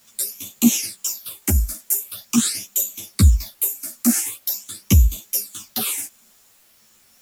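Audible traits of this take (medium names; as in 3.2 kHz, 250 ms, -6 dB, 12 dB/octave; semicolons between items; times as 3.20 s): phasing stages 8, 0.44 Hz, lowest notch 120–1600 Hz; a quantiser's noise floor 10-bit, dither triangular; a shimmering, thickened sound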